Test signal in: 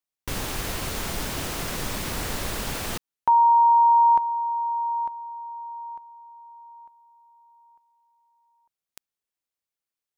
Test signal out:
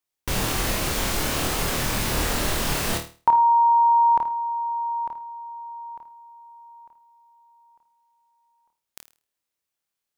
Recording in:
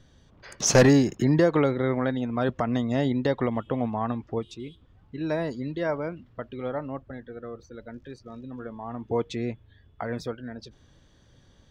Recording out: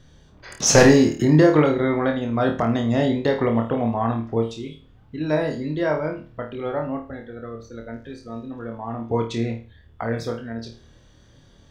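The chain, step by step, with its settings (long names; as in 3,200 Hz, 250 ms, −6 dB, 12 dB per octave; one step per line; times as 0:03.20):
flutter between parallel walls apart 4.5 metres, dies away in 0.35 s
level +3.5 dB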